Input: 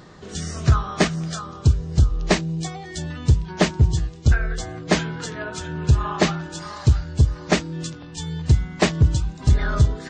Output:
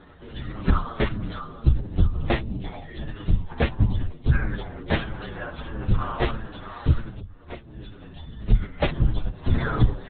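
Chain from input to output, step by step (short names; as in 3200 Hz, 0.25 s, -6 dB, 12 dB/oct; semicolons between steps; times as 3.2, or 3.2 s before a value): 7.1–8.42 compressor 6:1, threshold -32 dBFS, peak gain reduction 19.5 dB; LPC vocoder at 8 kHz whisper; endless flanger 7.8 ms -1.5 Hz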